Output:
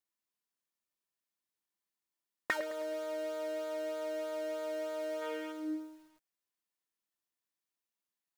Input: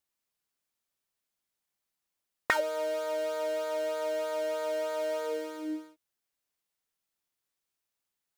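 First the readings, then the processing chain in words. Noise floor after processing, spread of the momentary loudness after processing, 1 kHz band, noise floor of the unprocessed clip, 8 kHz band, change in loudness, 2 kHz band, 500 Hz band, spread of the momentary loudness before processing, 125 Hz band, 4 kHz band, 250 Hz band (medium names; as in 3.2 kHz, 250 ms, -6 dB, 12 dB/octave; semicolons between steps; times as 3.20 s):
under -85 dBFS, 4 LU, -8.5 dB, under -85 dBFS, -7.0 dB, -5.5 dB, -5.5 dB, -6.0 dB, 8 LU, no reading, -6.5 dB, -1.0 dB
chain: bass shelf 170 Hz -7 dB; small resonant body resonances 210/320/1000/1800 Hz, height 8 dB, ringing for 70 ms; time-frequency box 5.22–5.52 s, 750–3500 Hz +8 dB; dynamic bell 1 kHz, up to -6 dB, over -50 dBFS, Q 4.1; bit-crushed delay 106 ms, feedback 55%, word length 8-bit, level -14 dB; trim -7 dB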